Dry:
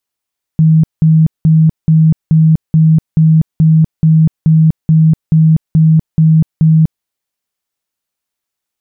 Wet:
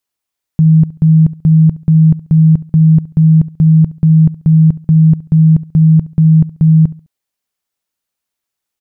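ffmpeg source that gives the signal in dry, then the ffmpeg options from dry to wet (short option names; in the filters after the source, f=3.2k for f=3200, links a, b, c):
-f lavfi -i "aevalsrc='0.631*sin(2*PI*159*mod(t,0.43))*lt(mod(t,0.43),39/159)':d=6.45:s=44100"
-af "aecho=1:1:69|138|207:0.112|0.0337|0.0101"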